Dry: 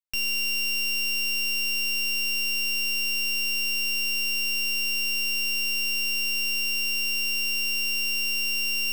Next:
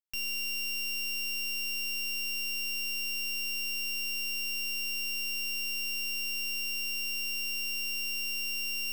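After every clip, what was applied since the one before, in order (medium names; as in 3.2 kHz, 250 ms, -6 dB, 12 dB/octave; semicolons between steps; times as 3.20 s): treble shelf 9.5 kHz +3.5 dB; trim -8 dB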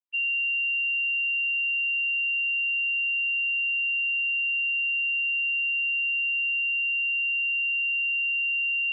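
formants replaced by sine waves; trim +7 dB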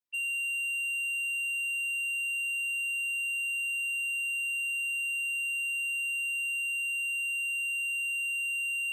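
saturation -30.5 dBFS, distortion -14 dB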